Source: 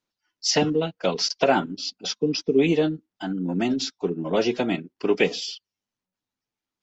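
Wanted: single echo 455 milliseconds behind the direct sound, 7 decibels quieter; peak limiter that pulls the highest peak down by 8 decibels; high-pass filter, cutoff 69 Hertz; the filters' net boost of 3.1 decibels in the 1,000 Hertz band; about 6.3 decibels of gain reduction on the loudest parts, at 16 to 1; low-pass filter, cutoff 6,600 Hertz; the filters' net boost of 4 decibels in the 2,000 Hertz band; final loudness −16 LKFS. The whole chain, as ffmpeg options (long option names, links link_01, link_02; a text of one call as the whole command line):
ffmpeg -i in.wav -af "highpass=69,lowpass=6600,equalizer=frequency=1000:width_type=o:gain=3.5,equalizer=frequency=2000:width_type=o:gain=4.5,acompressor=threshold=-19dB:ratio=16,alimiter=limit=-16dB:level=0:latency=1,aecho=1:1:455:0.447,volume=11dB" out.wav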